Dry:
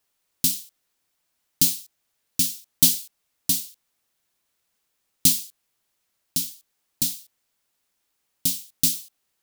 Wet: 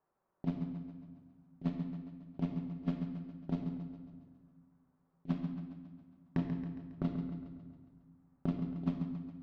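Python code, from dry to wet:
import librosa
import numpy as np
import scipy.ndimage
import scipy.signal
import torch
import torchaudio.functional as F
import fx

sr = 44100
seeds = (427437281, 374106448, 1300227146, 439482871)

y = scipy.signal.sosfilt(scipy.signal.butter(4, 1200.0, 'lowpass', fs=sr, output='sos'), x)
y = fx.low_shelf(y, sr, hz=130.0, db=-7.0)
y = fx.over_compress(y, sr, threshold_db=-37.0, ratio=-0.5)
y = fx.cheby_harmonics(y, sr, harmonics=(4, 6, 7, 8), levels_db=(-27, -18, -22, -20), full_scale_db=-25.5)
y = fx.echo_feedback(y, sr, ms=137, feedback_pct=56, wet_db=-9)
y = fx.room_shoebox(y, sr, seeds[0], volume_m3=1200.0, walls='mixed', distance_m=1.1)
y = y * librosa.db_to_amplitude(5.5)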